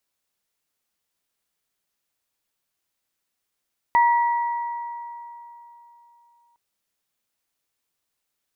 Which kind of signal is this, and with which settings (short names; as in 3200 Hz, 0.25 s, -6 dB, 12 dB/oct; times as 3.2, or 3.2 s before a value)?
sine partials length 2.61 s, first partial 945 Hz, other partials 1950 Hz, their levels -9.5 dB, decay 3.32 s, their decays 2.25 s, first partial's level -13 dB